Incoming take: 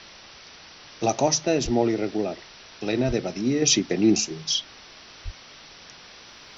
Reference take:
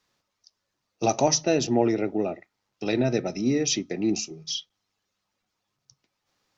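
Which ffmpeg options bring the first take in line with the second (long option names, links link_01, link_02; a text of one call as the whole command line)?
ffmpeg -i in.wav -filter_complex "[0:a]asplit=3[link_01][link_02][link_03];[link_01]afade=type=out:start_time=1.64:duration=0.02[link_04];[link_02]highpass=frequency=140:width=0.5412,highpass=frequency=140:width=1.3066,afade=type=in:start_time=1.64:duration=0.02,afade=type=out:start_time=1.76:duration=0.02[link_05];[link_03]afade=type=in:start_time=1.76:duration=0.02[link_06];[link_04][link_05][link_06]amix=inputs=3:normalize=0,asplit=3[link_07][link_08][link_09];[link_07]afade=type=out:start_time=3.07:duration=0.02[link_10];[link_08]highpass=frequency=140:width=0.5412,highpass=frequency=140:width=1.3066,afade=type=in:start_time=3.07:duration=0.02,afade=type=out:start_time=3.19:duration=0.02[link_11];[link_09]afade=type=in:start_time=3.19:duration=0.02[link_12];[link_10][link_11][link_12]amix=inputs=3:normalize=0,asplit=3[link_13][link_14][link_15];[link_13]afade=type=out:start_time=5.24:duration=0.02[link_16];[link_14]highpass=frequency=140:width=0.5412,highpass=frequency=140:width=1.3066,afade=type=in:start_time=5.24:duration=0.02,afade=type=out:start_time=5.36:duration=0.02[link_17];[link_15]afade=type=in:start_time=5.36:duration=0.02[link_18];[link_16][link_17][link_18]amix=inputs=3:normalize=0,afwtdn=0.0089,asetnsamples=nb_out_samples=441:pad=0,asendcmd='3.62 volume volume -6dB',volume=0dB" out.wav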